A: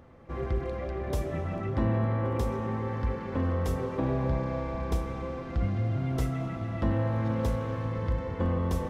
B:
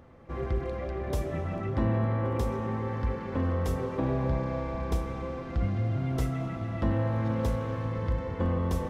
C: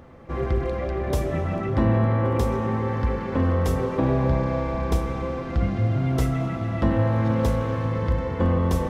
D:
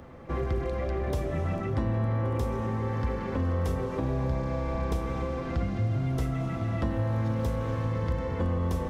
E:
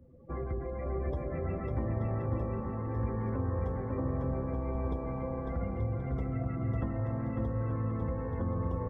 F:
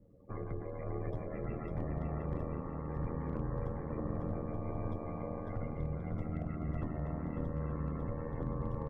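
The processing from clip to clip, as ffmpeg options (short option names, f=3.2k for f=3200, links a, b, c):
-af anull
-af "bandreject=f=50:t=h:w=6,bandreject=f=100:t=h:w=6,volume=7dB"
-filter_complex "[0:a]acrossover=split=96|5000[a][b][c];[a]acompressor=threshold=-30dB:ratio=4[d];[b]acompressor=threshold=-30dB:ratio=4[e];[c]acompressor=threshold=-53dB:ratio=4[f];[d][e][f]amix=inputs=3:normalize=0"
-af "afftdn=nr=26:nf=-40,aecho=1:1:550|880|1078|1197|1268:0.631|0.398|0.251|0.158|0.1,volume=-6.5dB"
-af "aeval=exprs='val(0)*sin(2*PI*40*n/s)':c=same,volume=25dB,asoftclip=hard,volume=-25dB,volume=-1.5dB"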